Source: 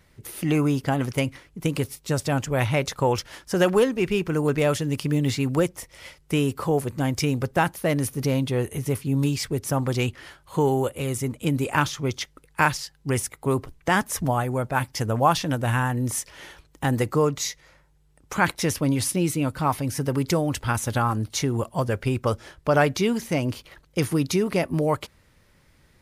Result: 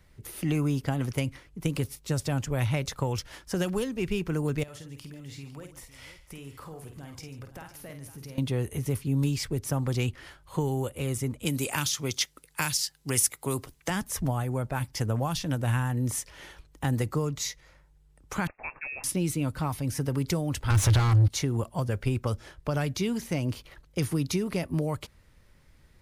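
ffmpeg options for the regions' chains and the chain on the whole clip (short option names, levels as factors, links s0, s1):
-filter_complex "[0:a]asettb=1/sr,asplit=3[s0][s1][s2];[s0]atrim=end=4.634[s3];[s1]atrim=start=4.63:end=8.38,asetpts=PTS-STARTPTS,afade=t=in:d=0.004:c=qsin,afade=t=out:st=3.746:d=0.004:c=qsin,equalizer=f=290:w=0.51:g=-5,acompressor=threshold=0.0112:ratio=5:attack=3.2:release=140:knee=1:detection=peak,aecho=1:1:50|143|506:0.447|0.158|0.2,atrim=end_sample=165375[s4];[s2]atrim=start=8.376[s5];[s3][s4]acrossfade=d=0.004:c1=hsin:c2=qsin[s6];[s6][s5]acrossfade=d=0.004:c1=qsin:c2=hsin,asettb=1/sr,asplit=3[s7][s8][s9];[s7]atrim=end=11.454[s10];[s8]atrim=start=11.45:end=13.9,asetpts=PTS-STARTPTS,afade=t=in:d=0.004:c=qsin,afade=t=out:st=2.446:d=0.004:c=qsin,highpass=f=170:p=1,highshelf=f=2900:g=12[s11];[s9]atrim=start=13.896[s12];[s10][s11]acrossfade=d=0.004:c1=hsin:c2=qsin[s13];[s13][s12]acrossfade=d=0.004:c1=qsin:c2=hsin,asettb=1/sr,asplit=3[s14][s15][s16];[s14]atrim=end=18.474[s17];[s15]atrim=start=18.47:end=19.04,asetpts=PTS-STARTPTS,afade=t=in:d=0.004:c=qsin,afade=t=out:st=0.566:d=0.004:c=qsin,highpass=f=1000:p=1,lowpass=f=2400:t=q:w=0.5098,lowpass=f=2400:t=q:w=0.6013,lowpass=f=2400:t=q:w=0.9,lowpass=f=2400:t=q:w=2.563,afreqshift=-2800[s18];[s16]atrim=start=19.036[s19];[s17][s18]acrossfade=d=0.004:c1=hsin:c2=qsin[s20];[s20][s19]acrossfade=d=0.004:c1=qsin:c2=hsin,asettb=1/sr,asplit=3[s21][s22][s23];[s21]atrim=end=20.704[s24];[s22]atrim=start=20.7:end=21.28,asetpts=PTS-STARTPTS,afade=t=in:d=0.004:c=qsin,afade=t=out:st=0.576:d=0.004:c=qsin,lowshelf=f=140:t=q:w=3:g=12,asplit=2[s25][s26];[s26]highpass=f=720:p=1,volume=28.2,asoftclip=type=tanh:threshold=0.562[s27];[s25][s27]amix=inputs=2:normalize=0,lowpass=f=2500:p=1,volume=0.501,acompressor=threshold=0.158:ratio=4:attack=3.2:release=140:knee=1:detection=peak[s28];[s23]atrim=start=21.276[s29];[s24][s28]acrossfade=d=0.004:c1=hsin:c2=qsin[s30];[s30][s29]acrossfade=d=0.004:c1=qsin:c2=hsin,lowshelf=f=67:g=10.5,acrossover=split=230|3000[s31][s32][s33];[s32]acompressor=threshold=0.0501:ratio=6[s34];[s31][s34][s33]amix=inputs=3:normalize=0,volume=0.631"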